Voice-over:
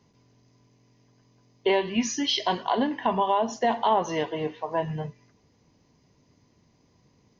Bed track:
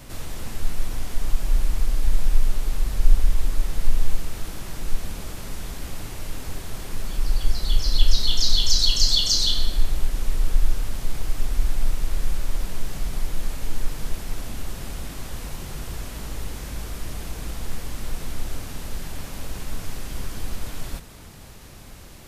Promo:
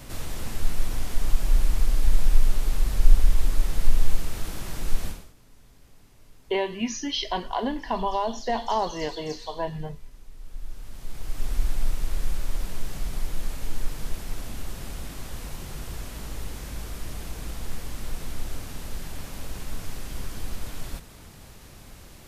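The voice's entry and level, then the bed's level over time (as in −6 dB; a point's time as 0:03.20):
4.85 s, −3.0 dB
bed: 0:05.08 0 dB
0:05.34 −22.5 dB
0:10.32 −22.5 dB
0:11.50 −3 dB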